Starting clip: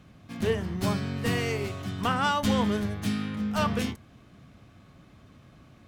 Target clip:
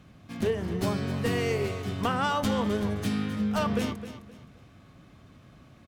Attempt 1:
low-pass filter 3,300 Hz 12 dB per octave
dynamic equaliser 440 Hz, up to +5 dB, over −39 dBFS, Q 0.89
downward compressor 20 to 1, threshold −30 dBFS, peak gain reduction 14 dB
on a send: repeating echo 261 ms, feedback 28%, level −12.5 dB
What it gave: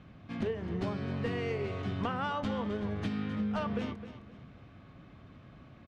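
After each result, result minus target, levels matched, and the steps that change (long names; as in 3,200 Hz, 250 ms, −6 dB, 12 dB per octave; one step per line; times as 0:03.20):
downward compressor: peak gain reduction +7 dB; 4,000 Hz band −3.0 dB
change: downward compressor 20 to 1, threshold −22.5 dBFS, peak gain reduction 7 dB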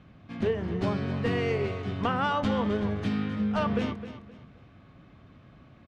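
4,000 Hz band −3.0 dB
remove: low-pass filter 3,300 Hz 12 dB per octave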